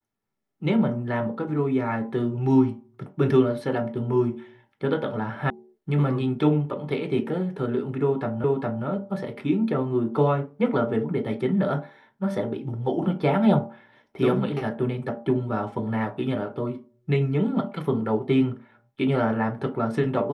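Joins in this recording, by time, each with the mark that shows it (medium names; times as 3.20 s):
5.50 s: sound stops dead
8.44 s: repeat of the last 0.41 s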